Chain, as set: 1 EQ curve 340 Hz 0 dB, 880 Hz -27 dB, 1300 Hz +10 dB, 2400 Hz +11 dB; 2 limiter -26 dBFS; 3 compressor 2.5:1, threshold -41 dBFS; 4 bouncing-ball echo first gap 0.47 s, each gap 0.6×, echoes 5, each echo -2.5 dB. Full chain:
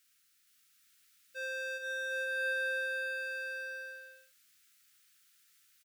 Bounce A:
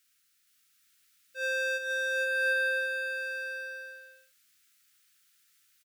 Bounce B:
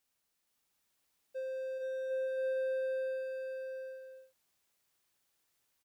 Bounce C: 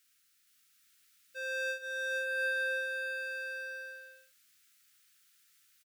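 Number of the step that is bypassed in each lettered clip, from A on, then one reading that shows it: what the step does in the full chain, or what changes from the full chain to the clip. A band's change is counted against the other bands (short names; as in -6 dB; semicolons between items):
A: 3, mean gain reduction 3.5 dB; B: 1, crest factor change -2.5 dB; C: 2, momentary loudness spread change +1 LU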